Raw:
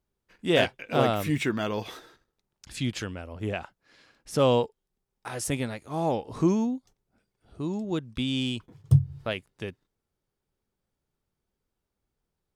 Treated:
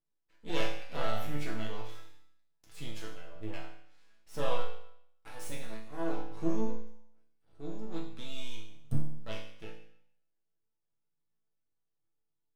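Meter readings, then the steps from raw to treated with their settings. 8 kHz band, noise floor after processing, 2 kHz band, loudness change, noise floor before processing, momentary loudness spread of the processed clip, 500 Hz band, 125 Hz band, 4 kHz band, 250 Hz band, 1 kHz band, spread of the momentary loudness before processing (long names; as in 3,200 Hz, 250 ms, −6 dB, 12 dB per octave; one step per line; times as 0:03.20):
−12.0 dB, −81 dBFS, −10.5 dB, −12.0 dB, −84 dBFS, 16 LU, −11.5 dB, −14.0 dB, −11.0 dB, −11.5 dB, −10.0 dB, 14 LU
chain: half-wave rectification
resonators tuned to a chord A2 sus4, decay 0.69 s
level +10.5 dB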